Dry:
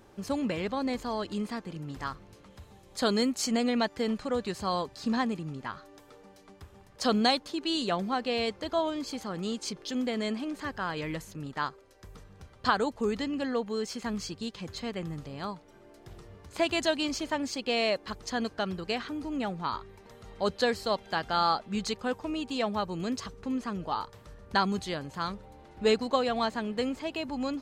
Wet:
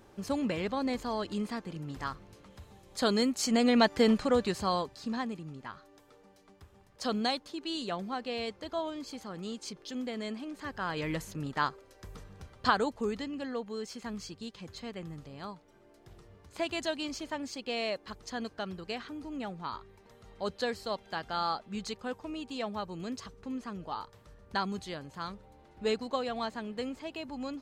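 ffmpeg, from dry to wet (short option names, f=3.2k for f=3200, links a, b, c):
-af "volume=14dB,afade=t=in:st=3.42:d=0.6:silence=0.446684,afade=t=out:st=4.02:d=1.06:silence=0.251189,afade=t=in:st=10.56:d=0.67:silence=0.398107,afade=t=out:st=12.29:d=1:silence=0.398107"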